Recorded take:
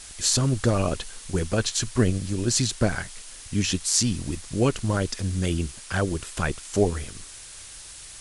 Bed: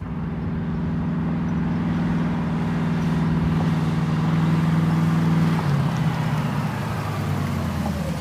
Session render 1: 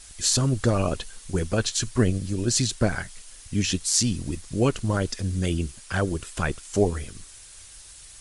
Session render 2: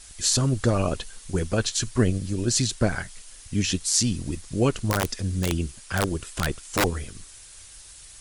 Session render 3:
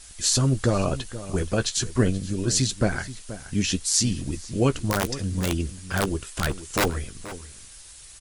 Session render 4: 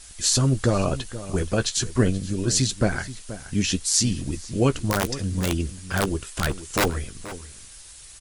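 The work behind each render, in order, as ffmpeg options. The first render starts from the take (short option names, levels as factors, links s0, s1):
-af "afftdn=nr=6:nf=-43"
-filter_complex "[0:a]asettb=1/sr,asplit=3[s0][s1][s2];[s0]atrim=end=4.904[s3];[s1]atrim=start=4.9:end=6.84,asetpts=PTS-STARTPTS,afade=t=in:d=0.004:c=qsin,afade=t=out:st=1.936:d=0.004:c=qsin,aeval=exprs='(mod(5.31*val(0)+1,2)-1)/5.31':c=same[s4];[s2]atrim=start=6.836[s5];[s3][s4]acrossfade=d=0.004:c1=hsin:c2=qsin[s6];[s6][s5]acrossfade=d=0.004:c1=qsin:c2=hsin"
-filter_complex "[0:a]asplit=2[s0][s1];[s1]adelay=15,volume=0.251[s2];[s0][s2]amix=inputs=2:normalize=0,asplit=2[s3][s4];[s4]adelay=478.1,volume=0.2,highshelf=f=4000:g=-10.8[s5];[s3][s5]amix=inputs=2:normalize=0"
-af "volume=1.12"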